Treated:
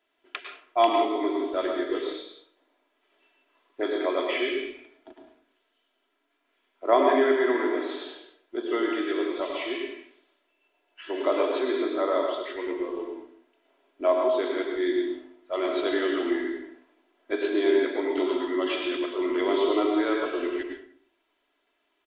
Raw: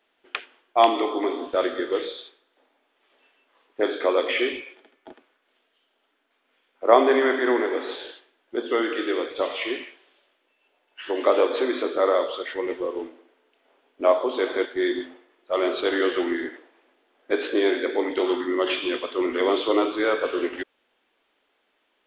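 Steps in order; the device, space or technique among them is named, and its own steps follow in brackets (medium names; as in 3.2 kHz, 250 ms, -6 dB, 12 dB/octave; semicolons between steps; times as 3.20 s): microphone above a desk (comb 3 ms, depth 54%; reverberation RT60 0.55 s, pre-delay 96 ms, DRR 2.5 dB); trim -6.5 dB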